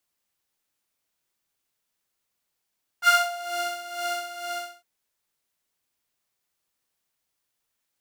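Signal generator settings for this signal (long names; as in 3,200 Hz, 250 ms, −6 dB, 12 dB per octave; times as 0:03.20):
subtractive patch with tremolo F5, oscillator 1 saw, interval +12 semitones, detune 19 cents, oscillator 2 level −4 dB, sub −29.5 dB, noise −20 dB, filter highpass, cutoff 270 Hz, Q 2.4, filter envelope 2.5 octaves, filter decay 0.62 s, filter sustain 0%, attack 53 ms, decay 0.21 s, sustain −10 dB, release 0.40 s, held 1.41 s, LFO 2.1 Hz, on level 11 dB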